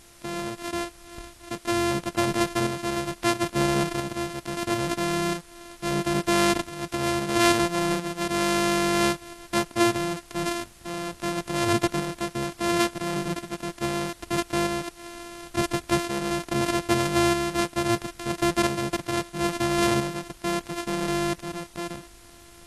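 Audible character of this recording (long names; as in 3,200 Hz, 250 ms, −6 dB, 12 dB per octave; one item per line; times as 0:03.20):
a buzz of ramps at a fixed pitch in blocks of 128 samples
tremolo saw up 0.75 Hz, depth 50%
a quantiser's noise floor 10 bits, dither triangular
AC-3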